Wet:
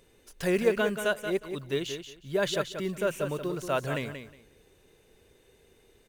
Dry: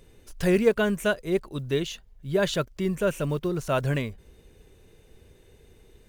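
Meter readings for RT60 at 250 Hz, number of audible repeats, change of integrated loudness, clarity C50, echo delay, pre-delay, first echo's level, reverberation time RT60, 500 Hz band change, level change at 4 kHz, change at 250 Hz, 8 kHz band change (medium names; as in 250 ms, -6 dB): no reverb, 2, -3.5 dB, no reverb, 181 ms, no reverb, -8.5 dB, no reverb, -3.0 dB, -1.5 dB, -5.5 dB, -1.5 dB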